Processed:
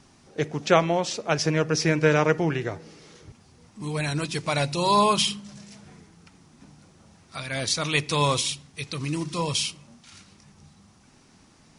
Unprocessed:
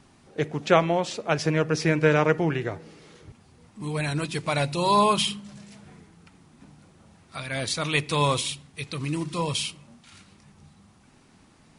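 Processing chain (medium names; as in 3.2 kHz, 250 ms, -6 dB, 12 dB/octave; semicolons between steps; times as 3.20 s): peaking EQ 5.7 kHz +7 dB 0.67 oct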